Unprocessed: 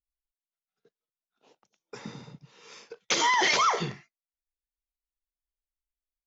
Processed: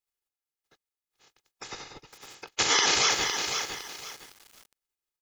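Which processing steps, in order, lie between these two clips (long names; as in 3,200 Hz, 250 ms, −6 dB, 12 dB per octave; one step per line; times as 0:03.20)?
ceiling on every frequency bin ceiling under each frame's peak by 27 dB
comb filter 2.4 ms, depth 49%
tempo change 1.2×
feedback echo at a low word length 509 ms, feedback 35%, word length 7 bits, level −6 dB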